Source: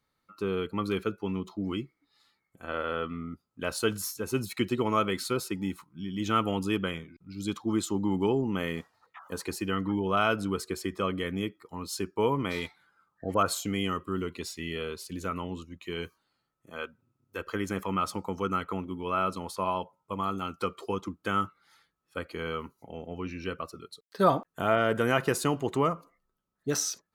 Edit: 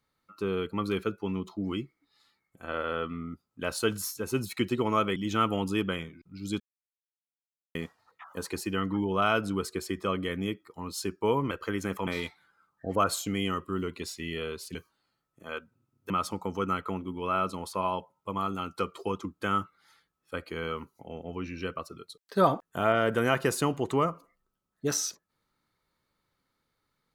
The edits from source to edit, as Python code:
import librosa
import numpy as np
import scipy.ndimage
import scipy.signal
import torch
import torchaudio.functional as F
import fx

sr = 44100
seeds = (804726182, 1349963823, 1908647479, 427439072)

y = fx.edit(x, sr, fx.cut(start_s=5.16, length_s=0.95),
    fx.silence(start_s=7.55, length_s=1.15),
    fx.cut(start_s=15.14, length_s=0.88),
    fx.move(start_s=17.37, length_s=0.56, to_s=12.46), tone=tone)